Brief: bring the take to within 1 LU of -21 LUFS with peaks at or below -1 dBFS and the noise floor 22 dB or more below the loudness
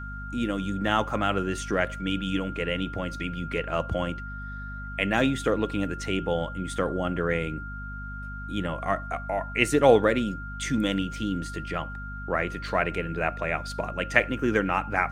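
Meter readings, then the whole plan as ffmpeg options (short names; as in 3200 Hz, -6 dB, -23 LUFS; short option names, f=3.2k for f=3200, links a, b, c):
hum 50 Hz; harmonics up to 250 Hz; hum level -35 dBFS; steady tone 1400 Hz; tone level -38 dBFS; loudness -27.5 LUFS; peak -2.5 dBFS; loudness target -21.0 LUFS
-> -af "bandreject=f=50:t=h:w=4,bandreject=f=100:t=h:w=4,bandreject=f=150:t=h:w=4,bandreject=f=200:t=h:w=4,bandreject=f=250:t=h:w=4"
-af "bandreject=f=1.4k:w=30"
-af "volume=6.5dB,alimiter=limit=-1dB:level=0:latency=1"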